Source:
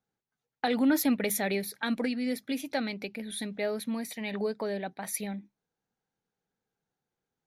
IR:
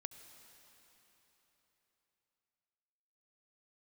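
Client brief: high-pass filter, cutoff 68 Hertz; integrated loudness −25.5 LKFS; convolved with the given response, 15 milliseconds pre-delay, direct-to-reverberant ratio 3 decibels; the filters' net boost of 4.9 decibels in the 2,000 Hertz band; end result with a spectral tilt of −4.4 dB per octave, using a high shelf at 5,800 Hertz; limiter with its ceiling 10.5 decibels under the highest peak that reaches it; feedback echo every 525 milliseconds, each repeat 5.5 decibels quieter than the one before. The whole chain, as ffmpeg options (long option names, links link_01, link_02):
-filter_complex "[0:a]highpass=68,equalizer=frequency=2000:width_type=o:gain=6.5,highshelf=frequency=5800:gain=-4.5,alimiter=limit=-23.5dB:level=0:latency=1,aecho=1:1:525|1050|1575|2100|2625|3150|3675:0.531|0.281|0.149|0.079|0.0419|0.0222|0.0118,asplit=2[link_01][link_02];[1:a]atrim=start_sample=2205,adelay=15[link_03];[link_02][link_03]afir=irnorm=-1:irlink=0,volume=1dB[link_04];[link_01][link_04]amix=inputs=2:normalize=0,volume=5.5dB"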